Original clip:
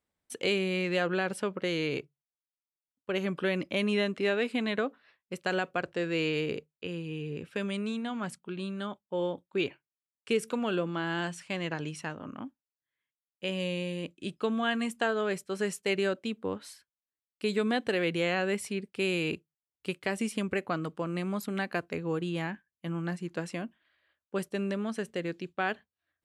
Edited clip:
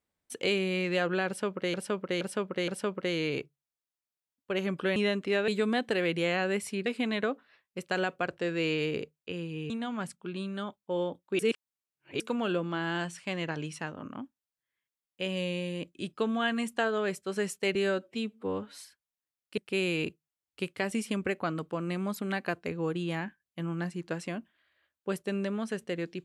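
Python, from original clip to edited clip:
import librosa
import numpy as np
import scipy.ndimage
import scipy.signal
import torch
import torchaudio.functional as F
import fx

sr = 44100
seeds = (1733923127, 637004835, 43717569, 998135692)

y = fx.edit(x, sr, fx.repeat(start_s=1.27, length_s=0.47, count=4),
    fx.cut(start_s=3.55, length_s=0.34),
    fx.cut(start_s=7.25, length_s=0.68),
    fx.reverse_span(start_s=9.62, length_s=0.81),
    fx.stretch_span(start_s=15.98, length_s=0.69, factor=1.5),
    fx.move(start_s=17.46, length_s=1.38, to_s=4.41), tone=tone)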